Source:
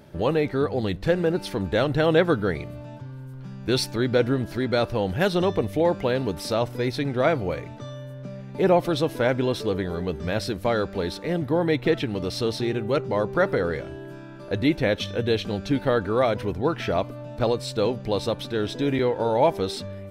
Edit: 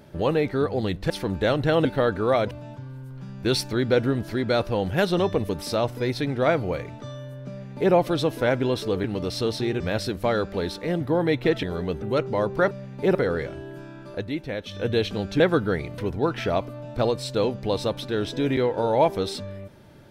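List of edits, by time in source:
1.10–1.41 s: delete
2.16–2.74 s: swap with 15.74–16.40 s
5.72–6.27 s: delete
8.27–8.71 s: copy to 13.49 s
9.82–10.21 s: swap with 12.04–12.80 s
14.47–15.15 s: dip -8.5 dB, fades 0.12 s

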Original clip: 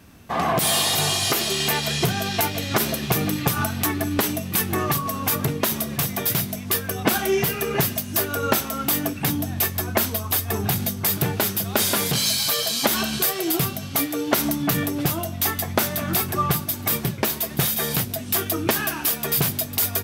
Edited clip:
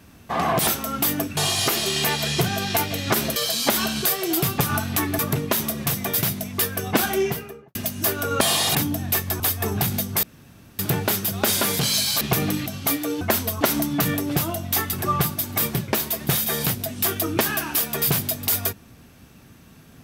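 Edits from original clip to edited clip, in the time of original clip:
0.67–1.01 s: swap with 8.53–9.23 s
3.00–3.45 s: swap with 12.53–13.75 s
4.06–5.31 s: delete
7.20–7.87 s: studio fade out
9.88–10.28 s: move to 14.30 s
11.11 s: insert room tone 0.56 s
15.62–16.23 s: delete

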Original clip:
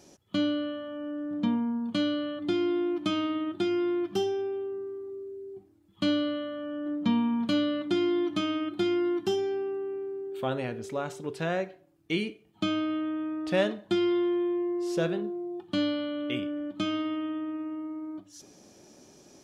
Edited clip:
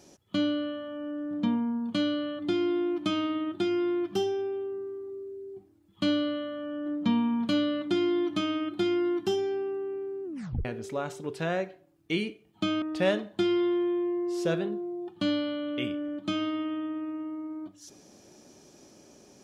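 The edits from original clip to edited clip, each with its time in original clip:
10.24 s: tape stop 0.41 s
12.82–13.34 s: delete

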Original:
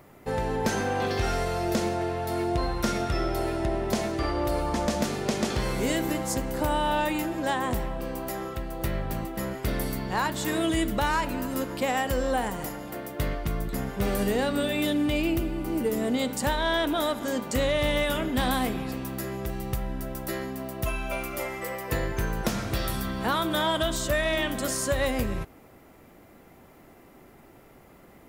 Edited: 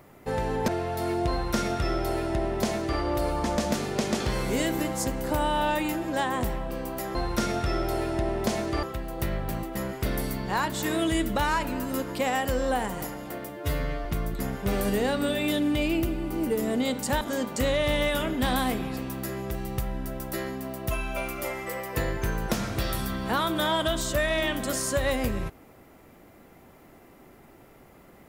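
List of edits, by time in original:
0.68–1.98 s: delete
2.61–4.29 s: copy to 8.45 s
13.11–13.39 s: stretch 2×
16.55–17.16 s: delete

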